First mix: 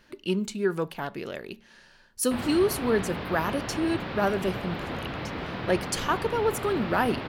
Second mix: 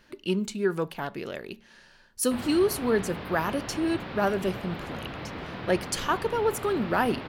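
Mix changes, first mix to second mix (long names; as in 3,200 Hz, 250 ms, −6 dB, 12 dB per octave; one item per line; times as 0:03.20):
background −5.5 dB
reverb: on, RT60 1.0 s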